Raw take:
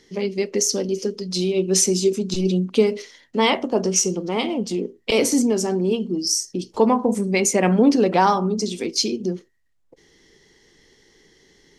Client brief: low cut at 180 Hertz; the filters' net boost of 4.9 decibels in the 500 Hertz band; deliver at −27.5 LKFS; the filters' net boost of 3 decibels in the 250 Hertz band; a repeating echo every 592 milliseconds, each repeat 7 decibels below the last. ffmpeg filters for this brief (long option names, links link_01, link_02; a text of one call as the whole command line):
ffmpeg -i in.wav -af "highpass=180,equalizer=frequency=250:width_type=o:gain=4,equalizer=frequency=500:width_type=o:gain=5,aecho=1:1:592|1184|1776|2368|2960:0.447|0.201|0.0905|0.0407|0.0183,volume=-10.5dB" out.wav